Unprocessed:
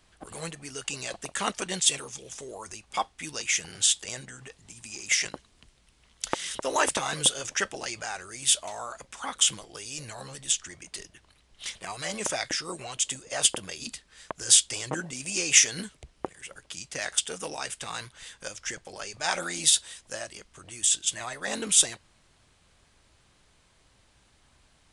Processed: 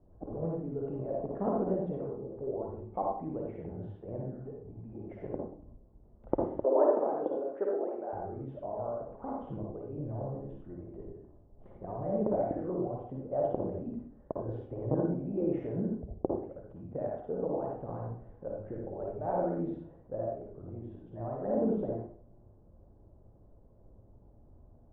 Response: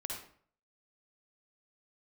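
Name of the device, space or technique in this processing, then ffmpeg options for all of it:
next room: -filter_complex "[0:a]lowpass=f=630:w=0.5412,lowpass=f=630:w=1.3066[s0];[1:a]atrim=start_sample=2205[s1];[s0][s1]afir=irnorm=-1:irlink=0,asettb=1/sr,asplit=3[s2][s3][s4];[s2]atrim=end=6.644[s5];[s3]atrim=start=6.64:end=8.13,asetpts=PTS-STARTPTS,afade=t=in:d=0.004:c=qsin,afade=t=out:st=1.486:d=0.004:c=qsin,highpass=f=300:w=0.5412,highpass=f=300:w=1.3066[s6];[s4]atrim=start=8.126[s7];[s5][s6]acrossfade=d=0.004:c1=hsin:c2=qsin[s8];[s8][s7]acrossfade=d=0.004:c1=qsin:c2=hsin,volume=2.24"

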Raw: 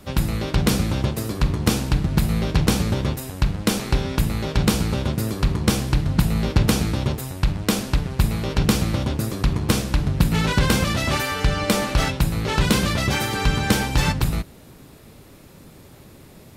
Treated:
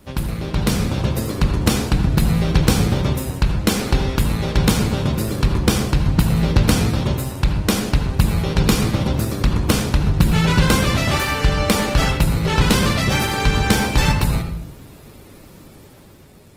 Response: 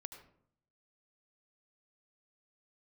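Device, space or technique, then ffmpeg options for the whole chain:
speakerphone in a meeting room: -filter_complex "[1:a]atrim=start_sample=2205[s0];[0:a][s0]afir=irnorm=-1:irlink=0,dynaudnorm=f=260:g=7:m=1.68,volume=1.5" -ar 48000 -c:a libopus -b:a 20k

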